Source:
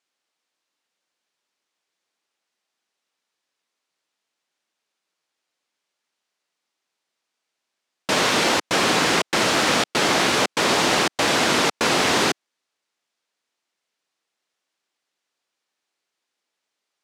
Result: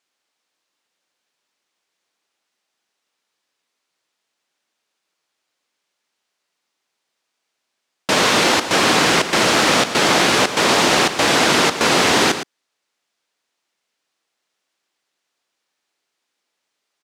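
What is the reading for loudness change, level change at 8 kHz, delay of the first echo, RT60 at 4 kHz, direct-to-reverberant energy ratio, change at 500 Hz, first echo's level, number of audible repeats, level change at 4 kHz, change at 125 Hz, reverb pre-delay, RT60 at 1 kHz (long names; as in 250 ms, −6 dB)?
+4.5 dB, +4.5 dB, 113 ms, no reverb audible, no reverb audible, +4.5 dB, −10.5 dB, 1, +4.5 dB, +4.5 dB, no reverb audible, no reverb audible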